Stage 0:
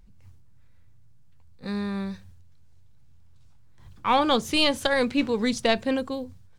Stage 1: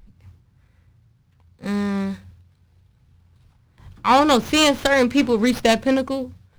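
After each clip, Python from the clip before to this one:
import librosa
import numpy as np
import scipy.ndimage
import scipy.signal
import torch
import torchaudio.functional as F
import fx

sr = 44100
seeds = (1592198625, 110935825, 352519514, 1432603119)

y = fx.running_max(x, sr, window=5)
y = y * 10.0 ** (6.5 / 20.0)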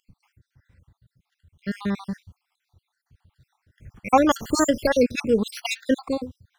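y = fx.spec_dropout(x, sr, seeds[0], share_pct=64)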